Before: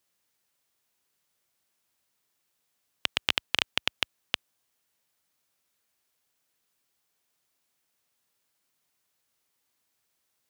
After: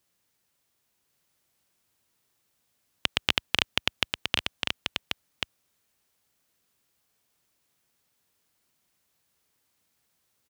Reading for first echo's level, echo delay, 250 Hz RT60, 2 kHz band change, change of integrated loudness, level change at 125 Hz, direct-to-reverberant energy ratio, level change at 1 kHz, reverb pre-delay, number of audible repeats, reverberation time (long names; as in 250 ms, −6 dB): −5.0 dB, 1,086 ms, no reverb audible, +3.0 dB, +0.5 dB, +9.0 dB, no reverb audible, +3.0 dB, no reverb audible, 1, no reverb audible